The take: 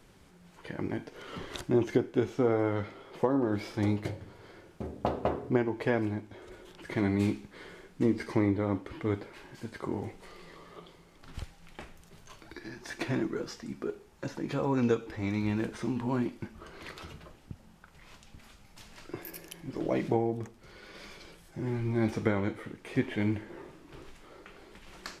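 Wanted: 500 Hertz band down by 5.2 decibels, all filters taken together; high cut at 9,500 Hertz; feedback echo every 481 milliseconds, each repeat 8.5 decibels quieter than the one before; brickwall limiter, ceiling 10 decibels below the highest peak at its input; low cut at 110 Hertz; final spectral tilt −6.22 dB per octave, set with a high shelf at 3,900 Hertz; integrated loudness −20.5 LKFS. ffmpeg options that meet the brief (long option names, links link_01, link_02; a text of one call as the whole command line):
ffmpeg -i in.wav -af "highpass=110,lowpass=9500,equalizer=frequency=500:width_type=o:gain=-7,highshelf=frequency=3900:gain=-5,alimiter=level_in=1dB:limit=-24dB:level=0:latency=1,volume=-1dB,aecho=1:1:481|962|1443|1924:0.376|0.143|0.0543|0.0206,volume=18dB" out.wav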